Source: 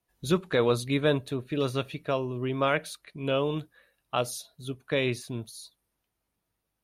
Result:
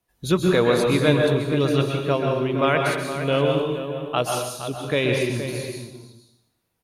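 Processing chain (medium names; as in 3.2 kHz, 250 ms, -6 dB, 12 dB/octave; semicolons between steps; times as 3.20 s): echo from a far wall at 80 m, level -9 dB; plate-style reverb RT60 0.84 s, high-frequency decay 0.95×, pre-delay 115 ms, DRR 1 dB; trim +4.5 dB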